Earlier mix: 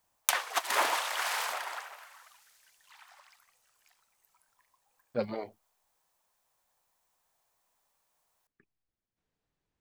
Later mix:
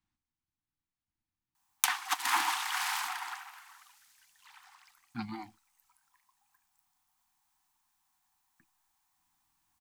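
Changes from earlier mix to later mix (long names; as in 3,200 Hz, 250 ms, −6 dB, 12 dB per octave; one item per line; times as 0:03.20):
background: entry +1.55 s
master: add Chebyshev band-stop filter 340–740 Hz, order 5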